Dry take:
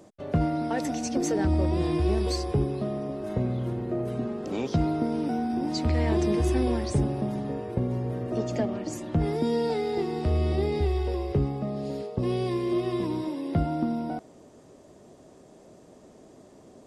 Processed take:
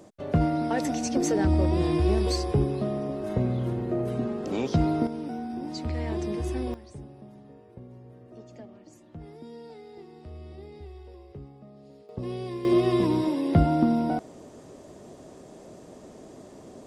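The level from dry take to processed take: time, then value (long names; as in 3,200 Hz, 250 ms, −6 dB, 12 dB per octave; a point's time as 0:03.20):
+1.5 dB
from 0:05.07 −6 dB
from 0:06.74 −18 dB
from 0:12.09 −6.5 dB
from 0:12.65 +5.5 dB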